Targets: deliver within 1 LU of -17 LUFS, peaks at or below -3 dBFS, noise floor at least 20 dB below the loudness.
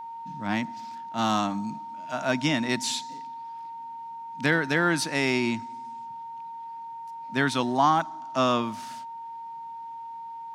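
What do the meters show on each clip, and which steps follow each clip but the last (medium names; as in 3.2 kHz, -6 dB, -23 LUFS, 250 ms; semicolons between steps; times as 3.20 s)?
steady tone 920 Hz; tone level -36 dBFS; loudness -26.5 LUFS; peak level -8.0 dBFS; loudness target -17.0 LUFS
-> band-stop 920 Hz, Q 30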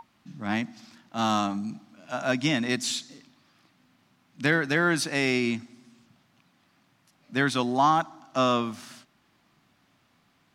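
steady tone not found; loudness -26.5 LUFS; peak level -8.5 dBFS; loudness target -17.0 LUFS
-> trim +9.5 dB; peak limiter -3 dBFS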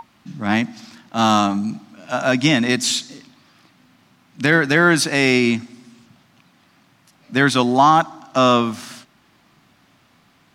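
loudness -17.5 LUFS; peak level -3.0 dBFS; noise floor -57 dBFS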